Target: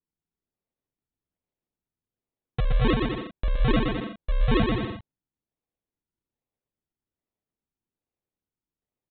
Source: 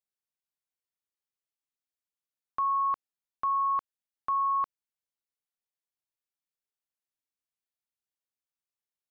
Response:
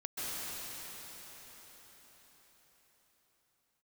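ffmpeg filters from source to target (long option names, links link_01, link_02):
-af "aresample=8000,acrusher=samples=10:mix=1:aa=0.000001:lfo=1:lforange=10:lforate=1.2,aresample=44100,aecho=1:1:120|210|277.5|328.1|366.1:0.631|0.398|0.251|0.158|0.1,volume=5dB"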